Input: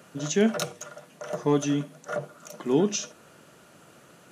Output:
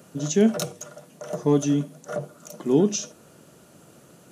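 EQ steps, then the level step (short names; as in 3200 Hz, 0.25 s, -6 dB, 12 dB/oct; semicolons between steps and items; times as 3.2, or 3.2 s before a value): bell 1800 Hz -9.5 dB 2.7 oct; +5.0 dB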